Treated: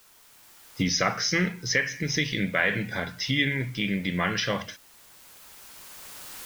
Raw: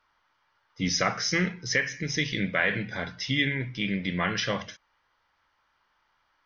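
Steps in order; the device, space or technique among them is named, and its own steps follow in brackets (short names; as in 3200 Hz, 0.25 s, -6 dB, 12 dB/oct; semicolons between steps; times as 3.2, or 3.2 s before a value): cheap recorder with automatic gain (white noise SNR 28 dB; recorder AGC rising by 8.7 dB/s); gain +1 dB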